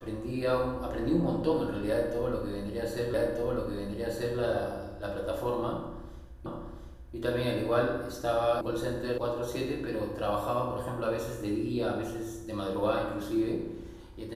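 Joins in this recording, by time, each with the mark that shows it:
3.14 s: repeat of the last 1.24 s
6.46 s: repeat of the last 0.69 s
8.61 s: sound stops dead
9.18 s: sound stops dead

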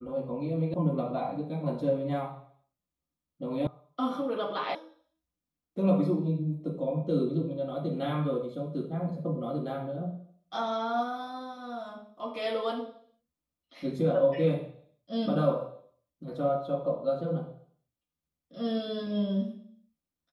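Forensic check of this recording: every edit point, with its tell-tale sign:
0.74 s: sound stops dead
3.67 s: sound stops dead
4.75 s: sound stops dead

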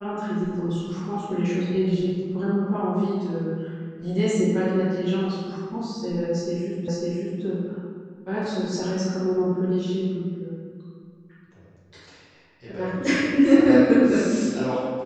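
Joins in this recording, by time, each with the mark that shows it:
6.88 s: repeat of the last 0.55 s

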